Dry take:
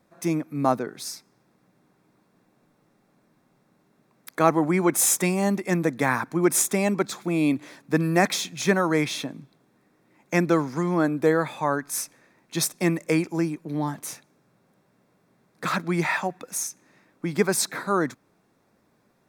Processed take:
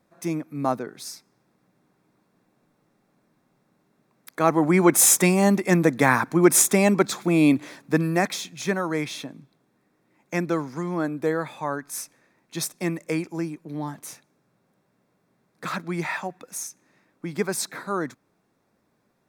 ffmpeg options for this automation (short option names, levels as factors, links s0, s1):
-af "volume=1.68,afade=t=in:st=4.39:d=0.42:silence=0.446684,afade=t=out:st=7.56:d=0.74:silence=0.375837"